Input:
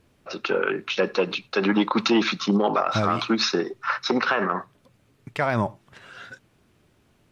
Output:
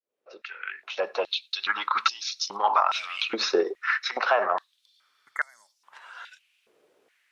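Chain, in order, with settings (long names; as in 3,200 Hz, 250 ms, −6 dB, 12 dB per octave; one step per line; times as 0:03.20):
fade in at the beginning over 1.62 s
healed spectral selection 0:04.89–0:05.69, 2,200–6,200 Hz before
high-pass on a step sequencer 2.4 Hz 470–5,300 Hz
level −4 dB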